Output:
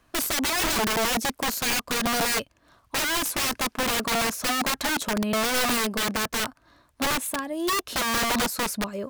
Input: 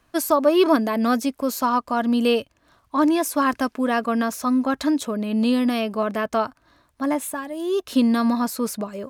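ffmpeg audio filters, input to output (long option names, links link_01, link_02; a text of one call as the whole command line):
ffmpeg -i in.wav -af "aeval=exprs='(mod(10*val(0)+1,2)-1)/10':channel_layout=same" out.wav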